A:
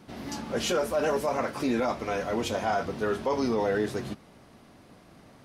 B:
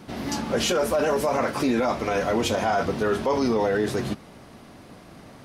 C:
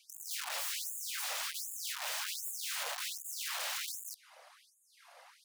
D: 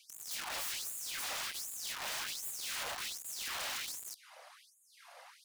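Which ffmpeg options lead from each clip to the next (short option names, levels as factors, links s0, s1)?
-af "alimiter=limit=0.0794:level=0:latency=1:release=36,volume=2.37"
-af "afftfilt=real='hypot(re,im)*cos(2*PI*random(0))':imag='hypot(re,im)*sin(2*PI*random(1))':win_size=512:overlap=0.75,aeval=exprs='(mod(42.2*val(0)+1,2)-1)/42.2':c=same,afftfilt=real='re*gte(b*sr/1024,470*pow(6700/470,0.5+0.5*sin(2*PI*1.3*pts/sr)))':imag='im*gte(b*sr/1024,470*pow(6700/470,0.5+0.5*sin(2*PI*1.3*pts/sr)))':win_size=1024:overlap=0.75"
-af "asoftclip=type=tanh:threshold=0.0126,volume=1.33"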